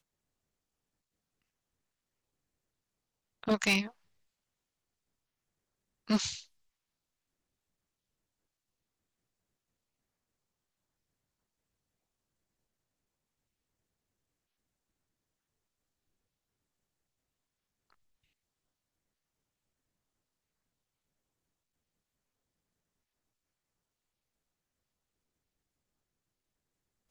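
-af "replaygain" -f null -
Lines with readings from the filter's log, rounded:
track_gain = +64.0 dB
track_peak = 0.061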